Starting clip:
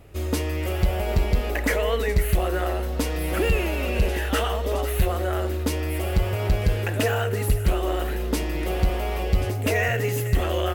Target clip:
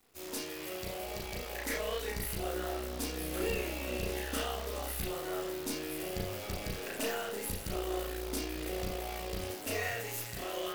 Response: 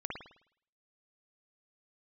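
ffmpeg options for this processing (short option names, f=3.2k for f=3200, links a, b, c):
-filter_complex "[0:a]acrossover=split=320|3800[a][b][c];[a]dynaudnorm=f=400:g=9:m=7dB[d];[d][b][c]amix=inputs=3:normalize=0,bass=f=250:g=-5,treble=f=4k:g=12,aeval=exprs='(tanh(3.55*val(0)+0.75)-tanh(0.75))/3.55':c=same,acrusher=bits=6:dc=4:mix=0:aa=0.000001,lowshelf=f=120:g=-10[e];[1:a]atrim=start_sample=2205,afade=t=out:st=0.19:d=0.01,atrim=end_sample=8820,asetrate=70560,aresample=44100[f];[e][f]afir=irnorm=-1:irlink=0,volume=-6dB"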